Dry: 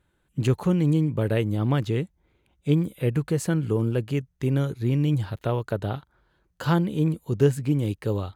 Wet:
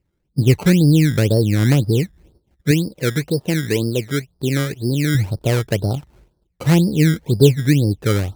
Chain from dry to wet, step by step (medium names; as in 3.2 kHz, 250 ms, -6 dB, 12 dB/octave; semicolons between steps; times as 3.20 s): companding laws mixed up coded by mu; gate -55 dBFS, range -17 dB; Bessel low-pass 570 Hz, order 4; decimation with a swept rate 17×, swing 100% 2 Hz; 2.71–5.15 s: bass shelf 170 Hz -10.5 dB; trim +8.5 dB